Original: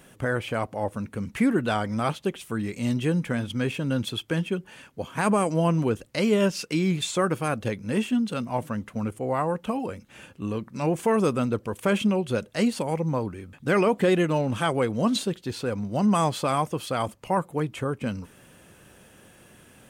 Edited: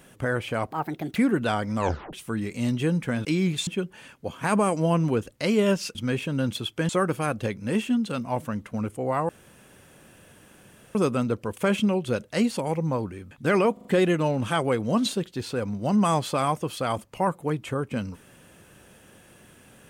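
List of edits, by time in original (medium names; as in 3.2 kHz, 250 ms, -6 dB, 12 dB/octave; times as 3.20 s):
0.71–1.38 s: speed 149%
1.98 s: tape stop 0.37 s
3.47–4.41 s: swap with 6.69–7.11 s
9.51–11.17 s: room tone
13.95 s: stutter 0.04 s, 4 plays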